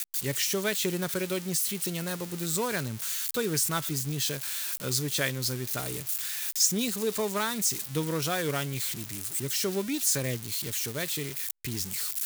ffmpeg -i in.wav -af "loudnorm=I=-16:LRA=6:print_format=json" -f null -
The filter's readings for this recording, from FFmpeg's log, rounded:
"input_i" : "-28.8",
"input_tp" : "-11.3",
"input_lra" : "1.3",
"input_thresh" : "-38.8",